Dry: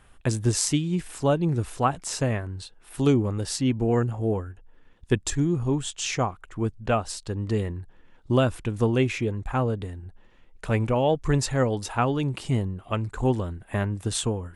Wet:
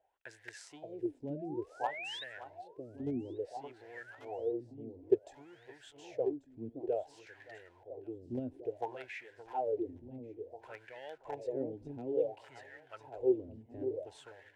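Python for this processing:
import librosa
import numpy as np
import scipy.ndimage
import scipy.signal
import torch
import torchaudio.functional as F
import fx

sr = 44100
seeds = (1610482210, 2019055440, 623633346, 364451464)

p1 = fx.quant_companded(x, sr, bits=2)
p2 = x + (p1 * librosa.db_to_amplitude(-10.5))
p3 = fx.spec_paint(p2, sr, seeds[0], shape='rise', start_s=1.35, length_s=0.89, low_hz=570.0, high_hz=3900.0, level_db=-22.0)
p4 = fx.fixed_phaser(p3, sr, hz=490.0, stages=4)
p5 = p4 + fx.echo_alternate(p4, sr, ms=570, hz=930.0, feedback_pct=59, wet_db=-5, dry=0)
p6 = fx.wah_lfo(p5, sr, hz=0.57, low_hz=220.0, high_hz=1800.0, q=8.0)
y = p6 * librosa.db_to_amplitude(1.0)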